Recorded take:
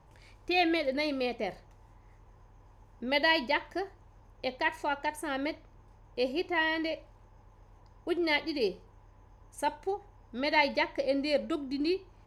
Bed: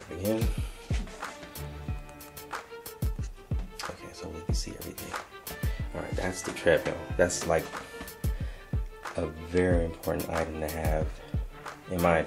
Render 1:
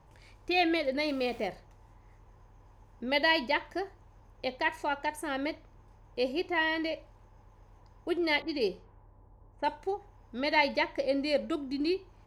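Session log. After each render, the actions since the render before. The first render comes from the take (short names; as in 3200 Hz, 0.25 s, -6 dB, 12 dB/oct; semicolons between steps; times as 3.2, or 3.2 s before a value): 1.08–1.48 zero-crossing step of -47.5 dBFS; 8.42–9.66 low-pass opened by the level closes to 770 Hz, open at -28 dBFS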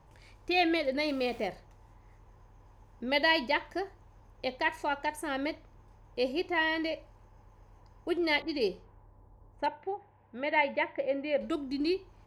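6.9–8.14 notch 3600 Hz; 9.66–11.41 speaker cabinet 110–2700 Hz, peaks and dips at 260 Hz -7 dB, 420 Hz -4 dB, 1200 Hz -6 dB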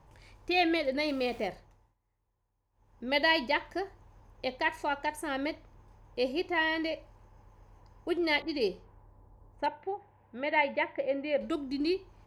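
1.52–3.15 dip -23.5 dB, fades 0.43 s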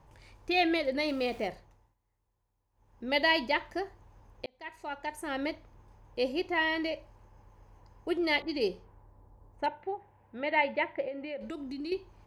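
4.46–5.43 fade in; 11.08–11.92 compressor 4:1, threshold -36 dBFS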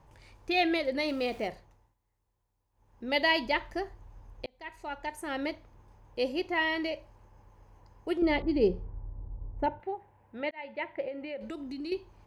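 3.45–5.09 low shelf 69 Hz +11.5 dB; 8.22–9.8 tilt -4 dB/oct; 10.51–11.07 fade in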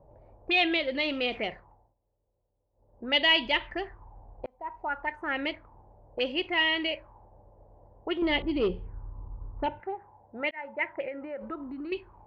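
soft clip -19.5 dBFS, distortion -18 dB; envelope low-pass 570–3100 Hz up, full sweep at -29 dBFS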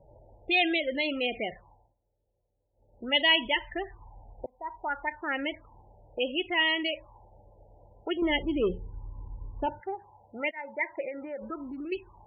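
loudest bins only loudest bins 32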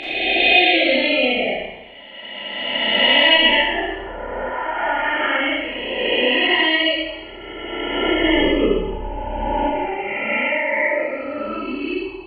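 spectral swells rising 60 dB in 2.36 s; Schroeder reverb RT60 1 s, combs from 28 ms, DRR -7 dB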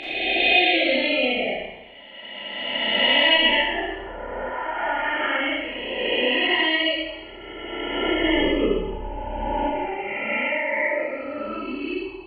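gain -4 dB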